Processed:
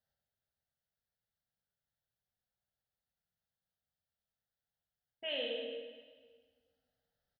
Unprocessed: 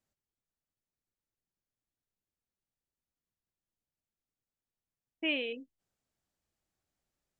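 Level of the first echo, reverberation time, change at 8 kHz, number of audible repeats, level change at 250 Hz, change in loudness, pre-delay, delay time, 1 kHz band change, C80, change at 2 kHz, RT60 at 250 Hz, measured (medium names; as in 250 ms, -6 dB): -7.0 dB, 1.5 s, no reading, 1, -13.0 dB, -5.5 dB, 12 ms, 97 ms, 0.0 dB, 2.0 dB, -9.0 dB, 1.7 s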